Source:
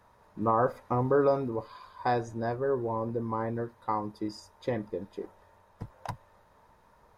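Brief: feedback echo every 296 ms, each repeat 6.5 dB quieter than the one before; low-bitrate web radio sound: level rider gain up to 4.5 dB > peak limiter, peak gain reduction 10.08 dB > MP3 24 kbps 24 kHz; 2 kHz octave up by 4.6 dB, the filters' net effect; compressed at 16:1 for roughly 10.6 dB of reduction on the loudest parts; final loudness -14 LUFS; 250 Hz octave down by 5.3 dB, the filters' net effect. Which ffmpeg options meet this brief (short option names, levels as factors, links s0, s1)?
-af "equalizer=f=250:t=o:g=-7,equalizer=f=2000:t=o:g=6.5,acompressor=threshold=0.0282:ratio=16,aecho=1:1:296|592|888|1184|1480|1776:0.473|0.222|0.105|0.0491|0.0231|0.0109,dynaudnorm=m=1.68,alimiter=level_in=2:limit=0.0631:level=0:latency=1,volume=0.501,volume=22.4" -ar 24000 -c:a libmp3lame -b:a 24k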